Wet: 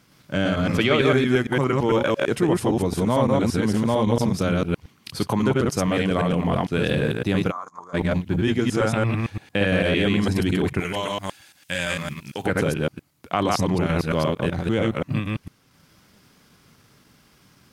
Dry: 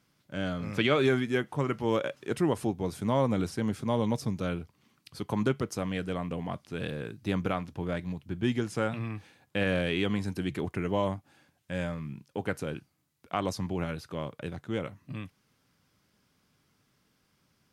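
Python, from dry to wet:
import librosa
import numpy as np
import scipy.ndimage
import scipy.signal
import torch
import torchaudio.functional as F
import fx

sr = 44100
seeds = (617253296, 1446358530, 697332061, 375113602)

p1 = fx.reverse_delay(x, sr, ms=113, wet_db=-0.5)
p2 = fx.transient(p1, sr, attack_db=0, sustain_db=-5)
p3 = fx.over_compress(p2, sr, threshold_db=-33.0, ratio=-1.0)
p4 = p2 + (p3 * 10.0 ** (1.5 / 20.0))
p5 = fx.double_bandpass(p4, sr, hz=2700.0, octaves=2.6, at=(7.5, 7.93), fade=0.02)
p6 = fx.tilt_shelf(p5, sr, db=-10.0, hz=1500.0, at=(10.8, 12.46))
y = p6 * 10.0 ** (3.0 / 20.0)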